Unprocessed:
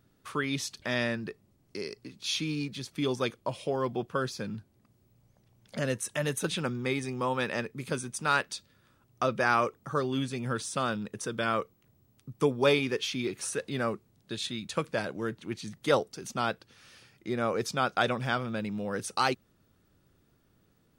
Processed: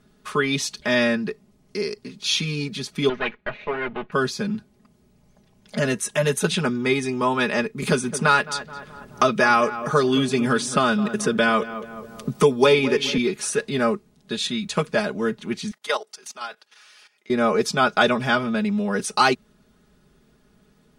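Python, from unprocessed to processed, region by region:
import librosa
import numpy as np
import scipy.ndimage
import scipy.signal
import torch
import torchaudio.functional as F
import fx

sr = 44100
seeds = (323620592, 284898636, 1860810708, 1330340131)

y = fx.chain(x, sr, fx.lower_of_two(delay_ms=0.48),
    fx.lowpass(hz=2500.0, slope=24),
    fx.tilt_shelf(db=-7.5, hz=1100.0), at=(3.09, 4.12))
y = fx.chain(y, sr, fx.echo_filtered(ms=213, feedback_pct=35, hz=1700.0, wet_db=-15.0),
    fx.band_squash(depth_pct=70), at=(7.82, 13.18))
y = fx.chain(y, sr, fx.highpass(hz=740.0, slope=12),
    fx.level_steps(step_db=15), at=(15.71, 17.3))
y = scipy.signal.sosfilt(scipy.signal.bessel(2, 11000.0, 'lowpass', norm='mag', fs=sr, output='sos'), y)
y = y + 0.86 * np.pad(y, (int(4.8 * sr / 1000.0), 0))[:len(y)]
y = y * 10.0 ** (7.0 / 20.0)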